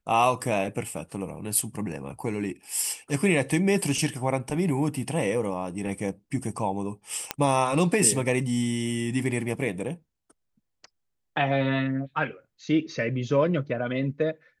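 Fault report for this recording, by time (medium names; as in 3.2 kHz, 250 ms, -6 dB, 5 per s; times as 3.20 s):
7.31 s: pop -8 dBFS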